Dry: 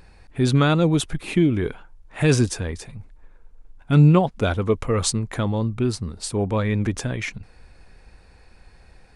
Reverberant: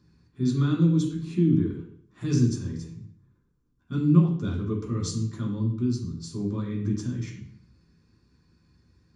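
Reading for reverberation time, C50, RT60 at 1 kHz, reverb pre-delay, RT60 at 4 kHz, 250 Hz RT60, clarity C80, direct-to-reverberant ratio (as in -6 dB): 0.65 s, 5.0 dB, 0.60 s, 3 ms, 0.55 s, 0.70 s, 8.5 dB, -3.5 dB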